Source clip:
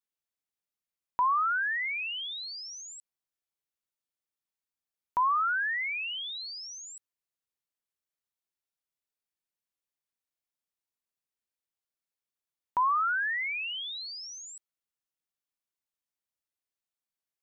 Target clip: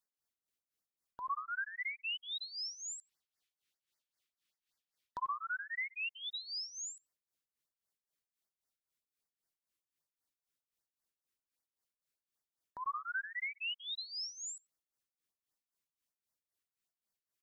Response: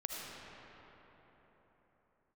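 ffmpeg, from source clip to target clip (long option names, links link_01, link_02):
-filter_complex "[0:a]asettb=1/sr,asplit=3[link_01][link_02][link_03];[link_01]atrim=end=2.984[link_04];[link_02]atrim=start=2.98:end=5.47,asetpts=PTS-STARTPTS,afade=type=in:duration=0.004:curve=qsin,afade=type=out:start_time=2.486:duration=0.004:curve=qsin,equalizer=frequency=3100:width_type=o:width=1.8:gain=11[link_05];[link_03]atrim=start=5.466[link_06];[link_04][link_05]acrossfade=duration=0.004:curve1=hsin:curve2=qsin[link_07];[link_07][link_06]acrossfade=duration=0.004:curve1=qsin:curve2=hsin,acompressor=threshold=-40dB:ratio=3,tremolo=f=3.8:d=0.82,asplit=2[link_08][link_09];[link_09]adelay=92,lowpass=frequency=800:poles=1,volume=-12dB,asplit=2[link_10][link_11];[link_11]adelay=92,lowpass=frequency=800:poles=1,volume=0.21,asplit=2[link_12][link_13];[link_13]adelay=92,lowpass=frequency=800:poles=1,volume=0.21[link_14];[link_08][link_10][link_12][link_14]amix=inputs=4:normalize=0,afftfilt=real='re*(1-between(b*sr/1024,660*pow(3200/660,0.5+0.5*sin(2*PI*5.1*pts/sr))/1.41,660*pow(3200/660,0.5+0.5*sin(2*PI*5.1*pts/sr))*1.41))':imag='im*(1-between(b*sr/1024,660*pow(3200/660,0.5+0.5*sin(2*PI*5.1*pts/sr))/1.41,660*pow(3200/660,0.5+0.5*sin(2*PI*5.1*pts/sr))*1.41))':win_size=1024:overlap=0.75,volume=3.5dB"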